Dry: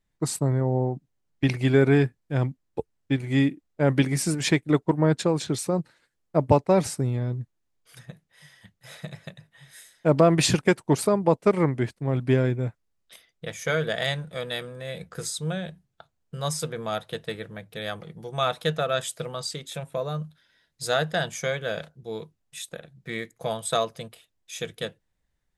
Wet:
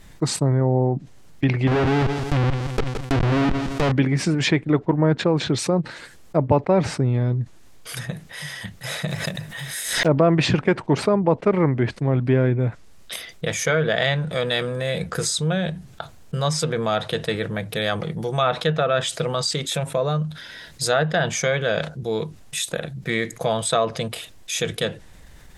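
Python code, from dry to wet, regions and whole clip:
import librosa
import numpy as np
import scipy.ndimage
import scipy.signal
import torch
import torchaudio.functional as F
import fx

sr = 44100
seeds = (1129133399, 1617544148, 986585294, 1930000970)

y = fx.chain(x, sr, fx.schmitt(flips_db=-30.0),
    fx.echo_feedback(ms=169, feedback_pct=47, wet_db=-14),
    fx.sustainer(db_per_s=150.0), at=(1.67, 3.92))
y = fx.chain(y, sr, fx.block_float(bits=5),
    fx.high_shelf(hz=10000.0, db=4.5),
    fx.pre_swell(db_per_s=120.0), at=(9.08, 10.1))
y = fx.env_lowpass_down(y, sr, base_hz=2600.0, full_db=-20.5)
y = fx.env_flatten(y, sr, amount_pct=50)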